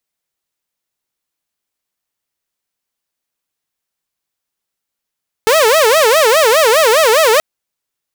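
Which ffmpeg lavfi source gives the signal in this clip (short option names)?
-f lavfi -i "aevalsrc='0.562*(2*mod((541.5*t-109.5/(2*PI*4.9)*sin(2*PI*4.9*t)),1)-1)':d=1.93:s=44100"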